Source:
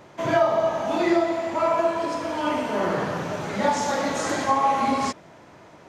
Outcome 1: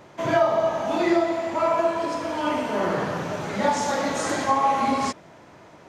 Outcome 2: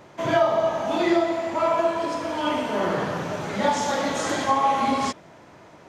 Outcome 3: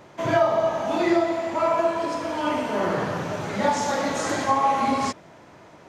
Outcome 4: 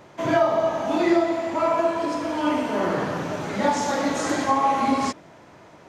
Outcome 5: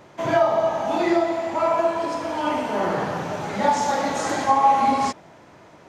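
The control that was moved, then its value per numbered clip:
dynamic bell, frequency: 8.9 kHz, 3.3 kHz, 110 Hz, 290 Hz, 810 Hz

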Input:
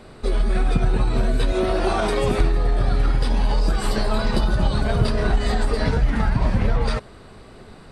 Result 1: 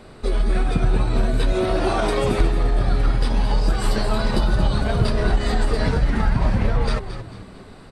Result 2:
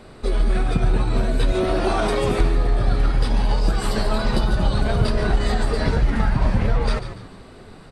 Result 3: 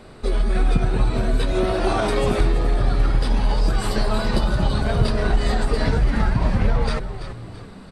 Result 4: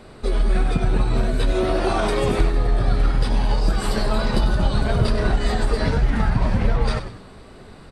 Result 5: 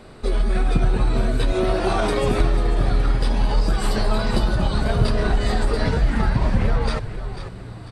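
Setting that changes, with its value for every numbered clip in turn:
frequency-shifting echo, time: 222 ms, 144 ms, 334 ms, 96 ms, 494 ms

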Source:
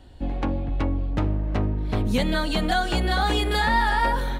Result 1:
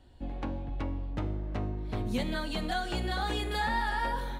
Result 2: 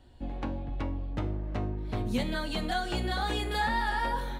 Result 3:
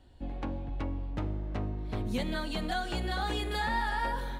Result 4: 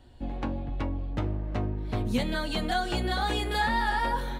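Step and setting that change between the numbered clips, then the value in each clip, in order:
feedback comb, decay: 0.95 s, 0.41 s, 2.2 s, 0.15 s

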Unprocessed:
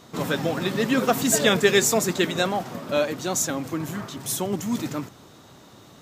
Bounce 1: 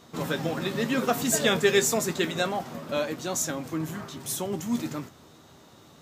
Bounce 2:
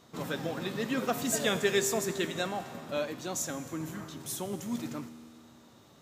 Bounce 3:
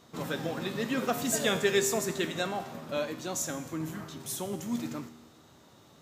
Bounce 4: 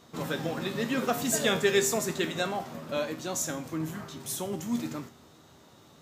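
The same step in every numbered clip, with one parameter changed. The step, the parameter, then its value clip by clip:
feedback comb, decay: 0.15 s, 2.2 s, 1 s, 0.44 s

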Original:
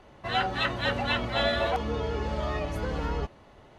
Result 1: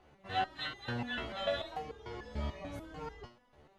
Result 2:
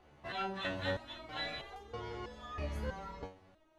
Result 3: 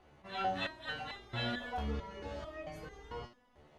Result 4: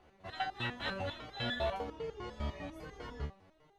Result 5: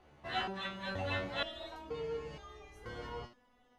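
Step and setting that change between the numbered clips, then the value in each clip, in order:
resonator arpeggio, rate: 6.8 Hz, 3.1 Hz, 4.5 Hz, 10 Hz, 2.1 Hz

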